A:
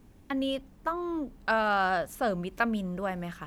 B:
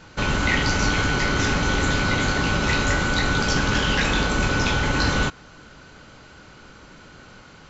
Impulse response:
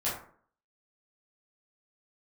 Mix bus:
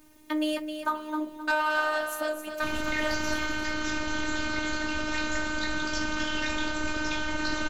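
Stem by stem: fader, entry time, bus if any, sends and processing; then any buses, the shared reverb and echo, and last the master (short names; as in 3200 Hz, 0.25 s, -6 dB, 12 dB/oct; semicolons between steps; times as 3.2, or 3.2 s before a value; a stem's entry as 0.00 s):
+0.5 dB, 0.00 s, send -17 dB, echo send -6.5 dB, tilt +2 dB/oct; comb 7 ms, depth 65%; soft clip -18 dBFS, distortion -18 dB
-6.0 dB, 2.45 s, no send, no echo send, dry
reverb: on, RT60 0.50 s, pre-delay 7 ms
echo: feedback echo 0.263 s, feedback 31%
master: vocal rider within 3 dB 2 s; robotiser 306 Hz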